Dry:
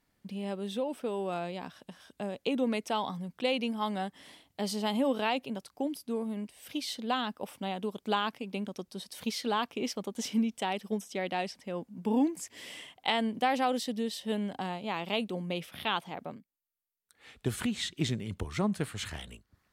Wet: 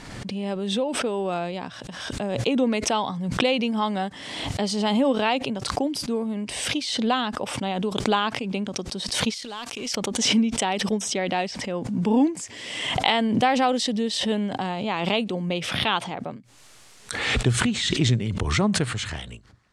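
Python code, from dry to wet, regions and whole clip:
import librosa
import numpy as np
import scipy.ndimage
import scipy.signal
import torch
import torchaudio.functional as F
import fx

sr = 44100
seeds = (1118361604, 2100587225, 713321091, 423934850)

y = fx.chain(x, sr, fx.law_mismatch(coded='A'),
    fx.pre_emphasis(coefficient=0.8),
    fx.sustainer(db_per_s=25.0), at=(9.34, 9.95))
y = scipy.signal.sosfilt(scipy.signal.butter(4, 8500.0, 'lowpass', fs=sr, output='sos'), y)
y = fx.peak_eq(y, sr, hz=120.0, db=8.0, octaves=0.23)
y = fx.pre_swell(y, sr, db_per_s=39.0)
y = y * librosa.db_to_amplitude(7.0)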